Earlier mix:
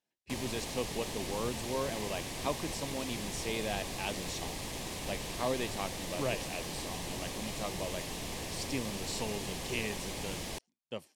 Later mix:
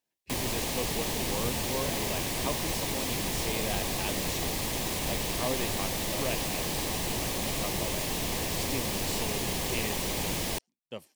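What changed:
background +7.5 dB; master: remove LPF 11000 Hz 12 dB/oct

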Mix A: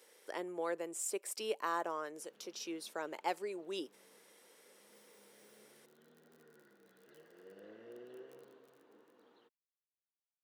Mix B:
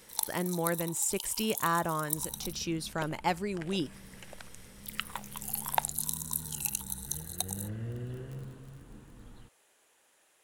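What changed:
first sound: unmuted; master: remove ladder high-pass 340 Hz, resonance 40%

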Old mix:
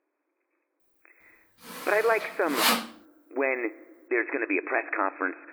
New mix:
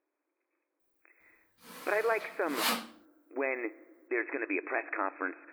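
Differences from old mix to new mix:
speech -6.0 dB; background -7.5 dB

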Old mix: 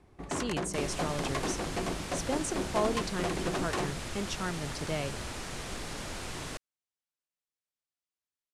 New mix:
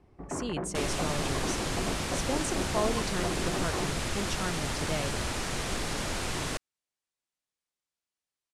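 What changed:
first sound: add Gaussian blur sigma 5 samples; second sound +6.5 dB

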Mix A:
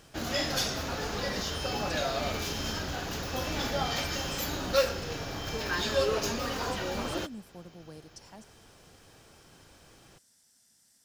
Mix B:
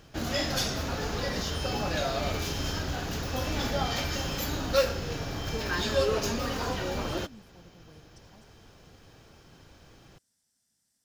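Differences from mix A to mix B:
speech -11.0 dB; master: add low shelf 270 Hz +5.5 dB

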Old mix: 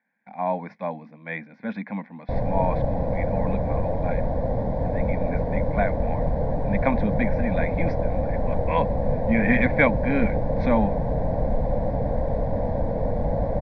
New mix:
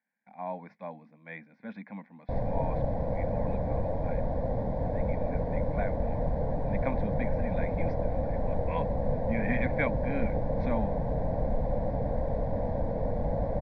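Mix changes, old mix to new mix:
speech -11.0 dB; background -5.5 dB

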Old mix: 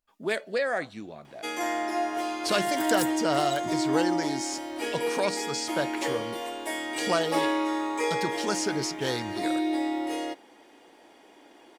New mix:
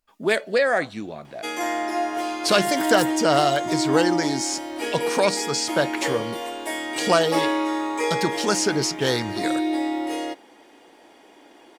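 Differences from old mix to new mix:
speech +7.5 dB; first sound +3.5 dB

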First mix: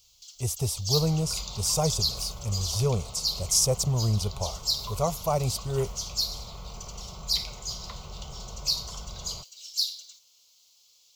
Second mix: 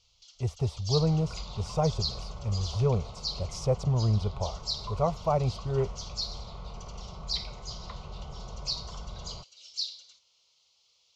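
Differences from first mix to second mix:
first sound: add bell 6000 Hz +10 dB 1.8 oct; master: add LPF 2100 Hz 12 dB/oct

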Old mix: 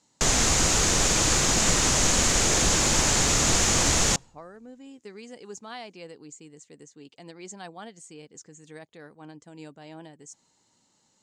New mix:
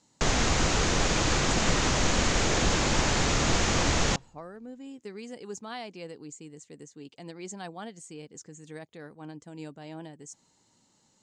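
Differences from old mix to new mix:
speech: add low shelf 350 Hz +4.5 dB; background: add air absorption 130 m

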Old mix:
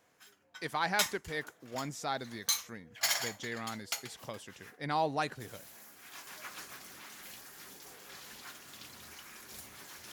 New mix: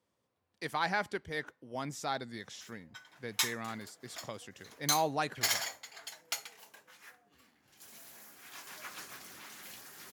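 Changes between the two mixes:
background: entry +2.40 s; master: add HPF 66 Hz

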